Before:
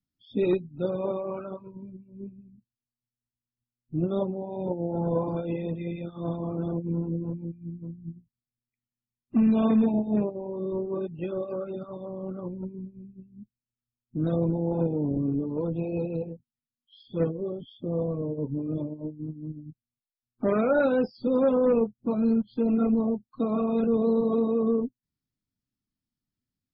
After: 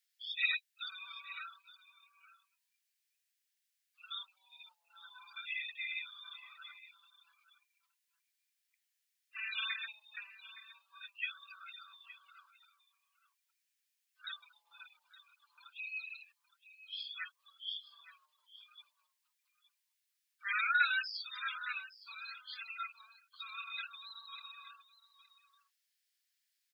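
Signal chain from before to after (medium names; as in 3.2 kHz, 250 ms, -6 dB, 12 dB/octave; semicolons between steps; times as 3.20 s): steep high-pass 1.6 kHz 48 dB/octave; on a send: delay 866 ms -16 dB; on the sum: trim +12 dB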